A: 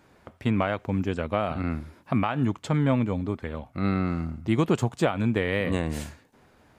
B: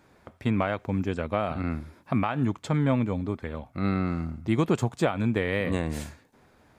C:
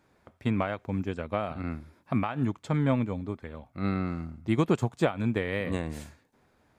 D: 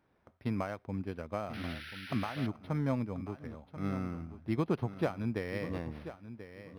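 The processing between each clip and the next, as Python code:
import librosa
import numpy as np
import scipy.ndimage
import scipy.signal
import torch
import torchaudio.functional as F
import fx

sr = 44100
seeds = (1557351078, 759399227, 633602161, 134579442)

y1 = fx.notch(x, sr, hz=2900.0, q=17.0)
y1 = F.gain(torch.from_numpy(y1), -1.0).numpy()
y2 = fx.upward_expand(y1, sr, threshold_db=-33.0, expansion=1.5)
y3 = fx.echo_feedback(y2, sr, ms=1036, feedback_pct=20, wet_db=-12.5)
y3 = fx.spec_paint(y3, sr, seeds[0], shape='noise', start_s=1.53, length_s=0.94, low_hz=1300.0, high_hz=6000.0, level_db=-38.0)
y3 = np.interp(np.arange(len(y3)), np.arange(len(y3))[::6], y3[::6])
y3 = F.gain(torch.from_numpy(y3), -6.5).numpy()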